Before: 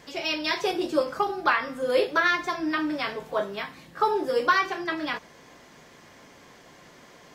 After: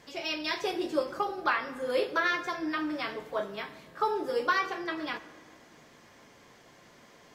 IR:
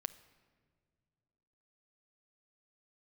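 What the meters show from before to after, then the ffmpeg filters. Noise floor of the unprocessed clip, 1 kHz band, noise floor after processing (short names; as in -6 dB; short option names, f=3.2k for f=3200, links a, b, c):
-52 dBFS, -5.5 dB, -57 dBFS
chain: -filter_complex "[1:a]atrim=start_sample=2205,asetrate=33516,aresample=44100[a];[0:a][a]afir=irnorm=-1:irlink=0,volume=-4.5dB"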